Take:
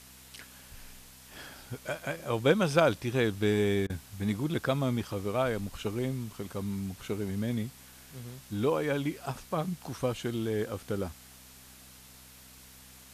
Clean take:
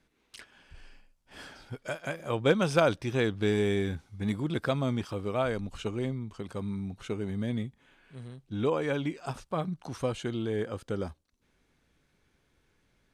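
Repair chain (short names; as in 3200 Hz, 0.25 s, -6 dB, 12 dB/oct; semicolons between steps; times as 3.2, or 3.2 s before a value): de-hum 64 Hz, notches 4; interpolate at 3.87, 26 ms; denoiser 18 dB, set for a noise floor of -53 dBFS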